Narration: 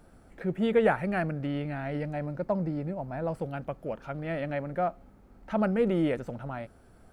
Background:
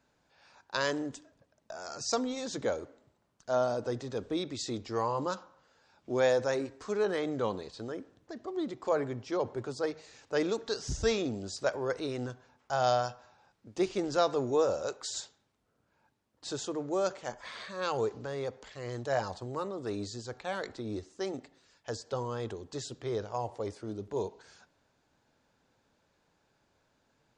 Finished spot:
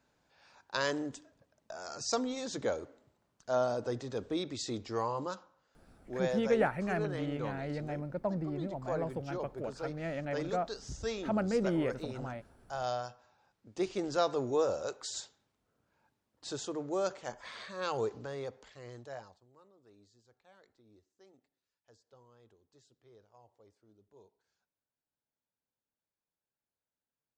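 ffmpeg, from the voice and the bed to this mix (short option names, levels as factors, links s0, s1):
-filter_complex "[0:a]adelay=5750,volume=0.562[s0];[1:a]volume=1.58,afade=t=out:st=4.89:d=0.65:silence=0.473151,afade=t=in:st=13.19:d=0.88:silence=0.530884,afade=t=out:st=18.18:d=1.22:silence=0.0630957[s1];[s0][s1]amix=inputs=2:normalize=0"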